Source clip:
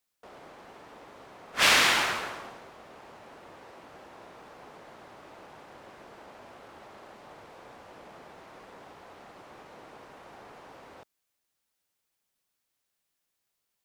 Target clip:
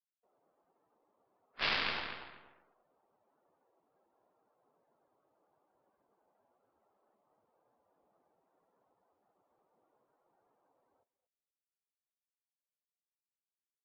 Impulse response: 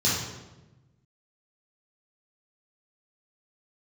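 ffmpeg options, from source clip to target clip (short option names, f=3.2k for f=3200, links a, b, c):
-filter_complex "[0:a]aeval=exprs='0.422*(cos(1*acos(clip(val(0)/0.422,-1,1)))-cos(1*PI/2))+0.0376*(cos(2*acos(clip(val(0)/0.422,-1,1)))-cos(2*PI/2))+0.133*(cos(3*acos(clip(val(0)/0.422,-1,1)))-cos(3*PI/2))':c=same,asplit=2[a][b];[b]adelay=238,lowpass=f=2.9k:p=1,volume=-7.5dB,asplit=2[c][d];[d]adelay=238,lowpass=f=2.9k:p=1,volume=0.23,asplit=2[e][f];[f]adelay=238,lowpass=f=2.9k:p=1,volume=0.23[g];[a][c][e][g]amix=inputs=4:normalize=0,aresample=11025,asoftclip=type=tanh:threshold=-19.5dB,aresample=44100,afftdn=nr=16:nf=-71"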